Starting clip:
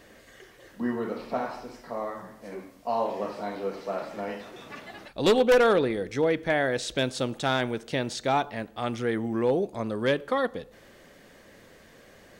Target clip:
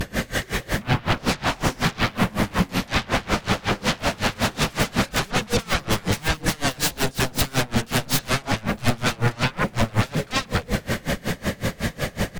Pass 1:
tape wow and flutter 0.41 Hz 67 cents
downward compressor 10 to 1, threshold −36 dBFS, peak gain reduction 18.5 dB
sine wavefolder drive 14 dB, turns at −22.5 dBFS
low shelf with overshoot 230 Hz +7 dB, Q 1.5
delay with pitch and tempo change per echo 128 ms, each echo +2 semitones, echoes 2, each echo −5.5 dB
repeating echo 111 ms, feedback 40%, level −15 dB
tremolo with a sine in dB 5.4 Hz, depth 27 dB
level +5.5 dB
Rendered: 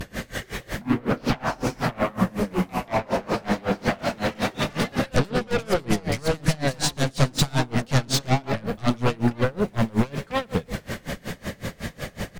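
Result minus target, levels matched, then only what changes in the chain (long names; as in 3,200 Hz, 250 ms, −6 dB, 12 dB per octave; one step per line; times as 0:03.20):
sine wavefolder: distortion −18 dB
change: sine wavefolder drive 22 dB, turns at −22.5 dBFS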